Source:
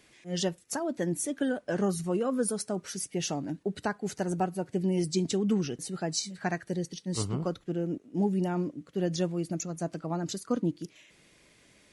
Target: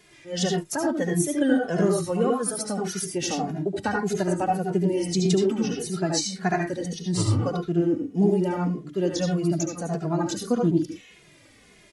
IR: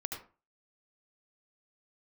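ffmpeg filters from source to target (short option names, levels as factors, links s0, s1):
-filter_complex "[1:a]atrim=start_sample=2205,atrim=end_sample=6174[s0];[0:a][s0]afir=irnorm=-1:irlink=0,asplit=2[s1][s2];[s2]adelay=2.4,afreqshift=-1.7[s3];[s1][s3]amix=inputs=2:normalize=1,volume=2.82"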